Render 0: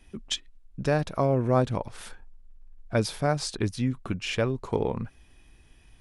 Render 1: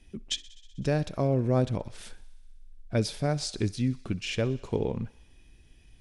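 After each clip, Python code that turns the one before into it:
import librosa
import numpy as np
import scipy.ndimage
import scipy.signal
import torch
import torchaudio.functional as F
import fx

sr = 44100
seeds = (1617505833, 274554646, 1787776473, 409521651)

y = scipy.signal.sosfilt(scipy.signal.butter(2, 9300.0, 'lowpass', fs=sr, output='sos'), x)
y = fx.peak_eq(y, sr, hz=1100.0, db=-9.5, octaves=1.5)
y = fx.echo_thinned(y, sr, ms=63, feedback_pct=78, hz=540.0, wet_db=-20.5)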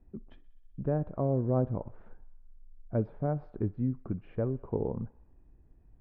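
y = scipy.signal.sosfilt(scipy.signal.butter(4, 1200.0, 'lowpass', fs=sr, output='sos'), x)
y = y * librosa.db_to_amplitude(-3.0)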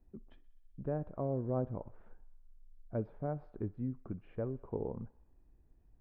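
y = fx.peak_eq(x, sr, hz=130.0, db=-3.0, octaves=2.3)
y = y * librosa.db_to_amplitude(-5.0)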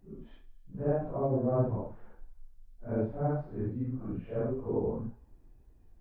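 y = fx.phase_scramble(x, sr, seeds[0], window_ms=200)
y = y * librosa.db_to_amplitude(7.0)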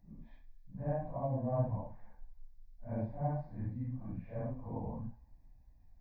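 y = fx.fixed_phaser(x, sr, hz=2000.0, stages=8)
y = y * librosa.db_to_amplitude(-2.0)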